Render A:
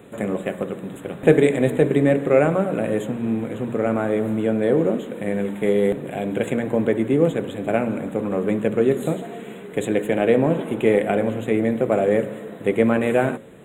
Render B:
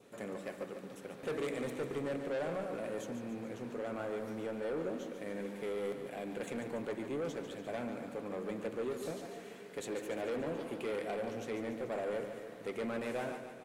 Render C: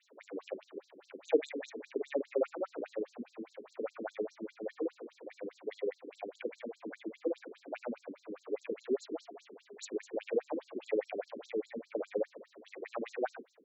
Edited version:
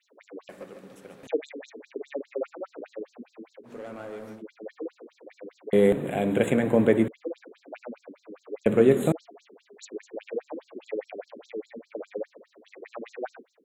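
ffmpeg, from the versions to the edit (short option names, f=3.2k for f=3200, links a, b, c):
-filter_complex "[1:a]asplit=2[a][b];[0:a]asplit=2[c][d];[2:a]asplit=5[e][f][g][h][i];[e]atrim=end=0.492[j];[a]atrim=start=0.488:end=1.272[k];[f]atrim=start=1.268:end=3.73[l];[b]atrim=start=3.63:end=4.43[m];[g]atrim=start=4.33:end=5.732[n];[c]atrim=start=5.728:end=7.082[o];[h]atrim=start=7.078:end=8.662[p];[d]atrim=start=8.658:end=9.122[q];[i]atrim=start=9.118[r];[j][k]acrossfade=d=0.004:c1=hsin:c2=hsin[s];[s][l]acrossfade=d=0.004:c1=hsin:c2=hsin[t];[t][m]acrossfade=d=0.1:c1=tri:c2=tri[u];[u][n]acrossfade=d=0.1:c1=tri:c2=tri[v];[v][o]acrossfade=d=0.004:c1=hsin:c2=hsin[w];[w][p]acrossfade=d=0.004:c1=hsin:c2=hsin[x];[x][q]acrossfade=d=0.004:c1=hsin:c2=hsin[y];[y][r]acrossfade=d=0.004:c1=hsin:c2=hsin"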